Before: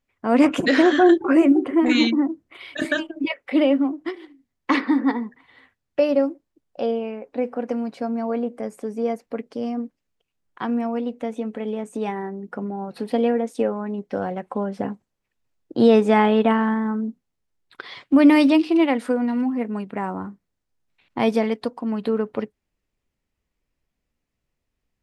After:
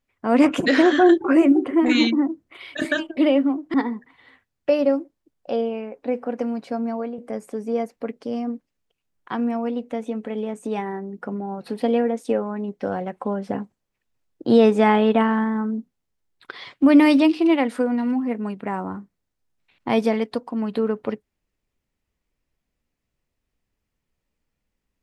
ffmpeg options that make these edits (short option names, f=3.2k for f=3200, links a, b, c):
-filter_complex "[0:a]asplit=4[a][b][c][d];[a]atrim=end=3.172[e];[b]atrim=start=3.518:end=4.092[f];[c]atrim=start=5.038:end=8.48,asetpts=PTS-STARTPTS,afade=t=out:st=3.142:d=0.3:silence=0.316228[g];[d]atrim=start=8.48,asetpts=PTS-STARTPTS,afade=t=in:d=0.004:c=hsin:silence=0.316228[h];[e][f]acrossfade=d=0.004:c1=hsin:c2=hsin[i];[g][h]concat=n=2:v=0:a=1[j];[i][j]acrossfade=d=0.004:c1=hsin:c2=hsin"